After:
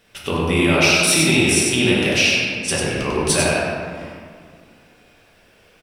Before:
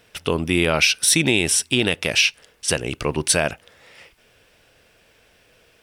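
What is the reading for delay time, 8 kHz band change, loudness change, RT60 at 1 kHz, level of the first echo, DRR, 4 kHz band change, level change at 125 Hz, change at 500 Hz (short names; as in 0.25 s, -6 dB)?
96 ms, +0.5 dB, +2.5 dB, 2.1 s, -5.0 dB, -7.0 dB, +1.5 dB, +4.5 dB, +4.0 dB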